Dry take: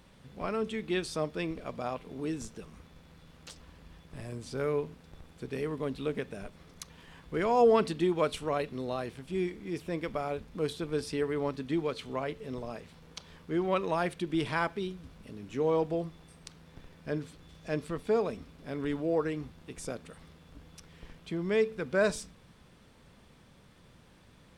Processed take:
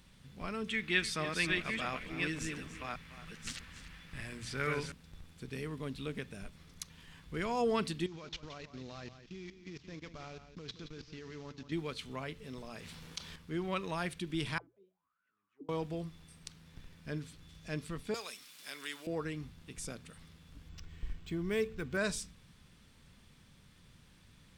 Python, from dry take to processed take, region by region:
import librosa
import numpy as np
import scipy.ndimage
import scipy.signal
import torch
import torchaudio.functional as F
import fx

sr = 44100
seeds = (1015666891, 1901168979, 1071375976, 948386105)

y = fx.chain(x, sr, fx.reverse_delay(ms=570, wet_db=-3.0),
    fx.peak_eq(hz=1900.0, db=11.5, octaves=1.5),
    fx.echo_single(ms=290, db=-14.0), at=(0.68, 4.92))
y = fx.chain(y, sr, fx.cvsd(bps=32000),
    fx.level_steps(step_db=20),
    fx.echo_single(ms=173, db=-11.0), at=(8.06, 11.72))
y = fx.chain(y, sr, fx.low_shelf(hz=180.0, db=-6.5),
    fx.env_flatten(amount_pct=50), at=(12.46, 13.36))
y = fx.chain(y, sr, fx.comb_fb(f0_hz=100.0, decay_s=0.3, harmonics='all', damping=0.0, mix_pct=40),
    fx.auto_wah(base_hz=270.0, top_hz=1800.0, q=18.0, full_db=-29.5, direction='down'), at=(14.58, 15.69))
y = fx.chain(y, sr, fx.highpass(hz=650.0, slope=6),
    fx.tilt_eq(slope=4.0),
    fx.band_squash(depth_pct=40), at=(18.14, 19.07))
y = fx.chain(y, sr, fx.low_shelf(hz=150.0, db=10.0),
    fx.comb(ms=2.7, depth=0.38),
    fx.resample_linear(factor=4), at=(20.69, 21.97))
y = fx.peak_eq(y, sr, hz=570.0, db=-11.5, octaves=2.5)
y = fx.hum_notches(y, sr, base_hz=60, count=2)
y = y * 10.0 ** (1.0 / 20.0)